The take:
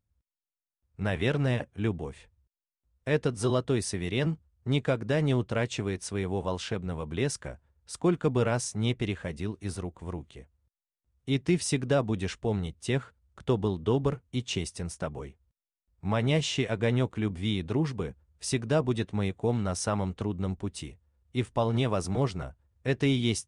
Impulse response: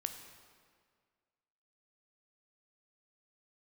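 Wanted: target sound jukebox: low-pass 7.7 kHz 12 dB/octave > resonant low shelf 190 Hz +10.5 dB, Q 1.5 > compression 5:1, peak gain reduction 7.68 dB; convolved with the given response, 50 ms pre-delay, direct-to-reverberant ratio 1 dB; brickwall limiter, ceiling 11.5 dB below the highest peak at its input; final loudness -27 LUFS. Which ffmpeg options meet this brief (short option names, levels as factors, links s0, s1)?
-filter_complex "[0:a]alimiter=level_in=1.12:limit=0.0631:level=0:latency=1,volume=0.891,asplit=2[s0][s1];[1:a]atrim=start_sample=2205,adelay=50[s2];[s1][s2]afir=irnorm=-1:irlink=0,volume=0.944[s3];[s0][s3]amix=inputs=2:normalize=0,lowpass=7700,lowshelf=f=190:t=q:w=1.5:g=10.5,acompressor=threshold=0.0794:ratio=5,volume=1.12"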